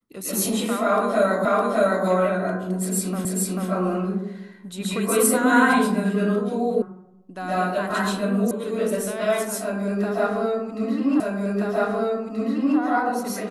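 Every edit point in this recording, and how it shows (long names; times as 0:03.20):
0:01.45: the same again, the last 0.61 s
0:03.25: the same again, the last 0.44 s
0:06.82: cut off before it has died away
0:08.51: cut off before it has died away
0:11.20: the same again, the last 1.58 s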